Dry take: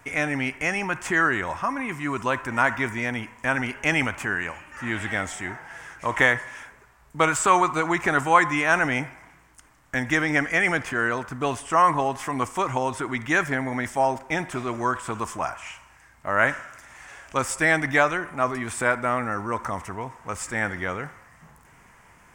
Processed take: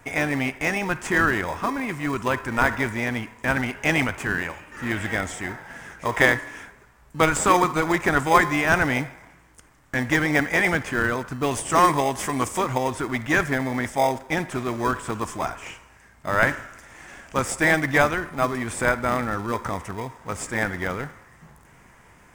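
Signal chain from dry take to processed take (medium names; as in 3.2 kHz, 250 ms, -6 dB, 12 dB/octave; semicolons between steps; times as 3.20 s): 11.51–12.59 s: treble shelf 4.2 kHz +10.5 dB; in parallel at -8 dB: sample-and-hold 31×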